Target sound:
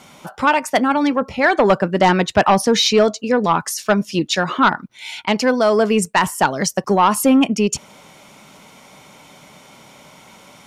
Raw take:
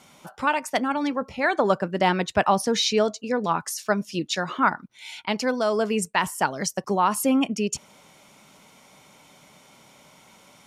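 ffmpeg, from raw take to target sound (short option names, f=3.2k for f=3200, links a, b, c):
-af "equalizer=f=10k:t=o:w=2:g=-3,aeval=exprs='0.501*sin(PI/2*1.78*val(0)/0.501)':c=same"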